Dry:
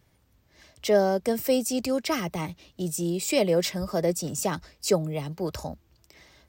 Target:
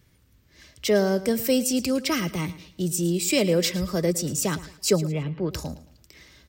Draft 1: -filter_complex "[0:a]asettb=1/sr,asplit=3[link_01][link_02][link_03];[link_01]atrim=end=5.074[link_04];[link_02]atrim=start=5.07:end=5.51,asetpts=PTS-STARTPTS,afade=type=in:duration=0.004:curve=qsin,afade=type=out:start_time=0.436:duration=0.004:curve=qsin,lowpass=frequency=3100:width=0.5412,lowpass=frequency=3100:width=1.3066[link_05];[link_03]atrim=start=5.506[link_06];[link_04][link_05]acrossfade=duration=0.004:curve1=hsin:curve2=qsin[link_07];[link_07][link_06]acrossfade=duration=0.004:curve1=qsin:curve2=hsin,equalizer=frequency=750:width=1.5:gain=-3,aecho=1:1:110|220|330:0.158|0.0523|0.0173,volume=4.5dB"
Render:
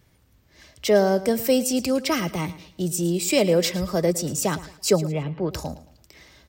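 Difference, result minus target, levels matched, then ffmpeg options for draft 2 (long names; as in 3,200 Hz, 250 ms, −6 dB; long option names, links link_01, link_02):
1,000 Hz band +3.5 dB
-filter_complex "[0:a]asettb=1/sr,asplit=3[link_01][link_02][link_03];[link_01]atrim=end=5.074[link_04];[link_02]atrim=start=5.07:end=5.51,asetpts=PTS-STARTPTS,afade=type=in:duration=0.004:curve=qsin,afade=type=out:start_time=0.436:duration=0.004:curve=qsin,lowpass=frequency=3100:width=0.5412,lowpass=frequency=3100:width=1.3066[link_05];[link_03]atrim=start=5.506[link_06];[link_04][link_05]acrossfade=duration=0.004:curve1=hsin:curve2=qsin[link_07];[link_07][link_06]acrossfade=duration=0.004:curve1=qsin:curve2=hsin,equalizer=frequency=750:width=1.5:gain=-10.5,aecho=1:1:110|220|330:0.158|0.0523|0.0173,volume=4.5dB"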